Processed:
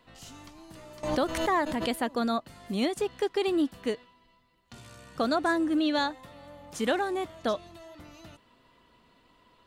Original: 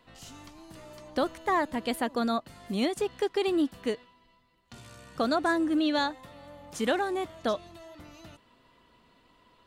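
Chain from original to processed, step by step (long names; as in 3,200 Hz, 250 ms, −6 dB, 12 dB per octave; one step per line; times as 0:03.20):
0:01.03–0:01.94: background raised ahead of every attack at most 54 dB per second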